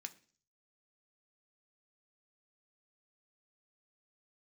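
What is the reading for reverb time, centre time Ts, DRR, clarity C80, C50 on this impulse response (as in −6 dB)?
0.45 s, 4 ms, 6.5 dB, 22.5 dB, 18.0 dB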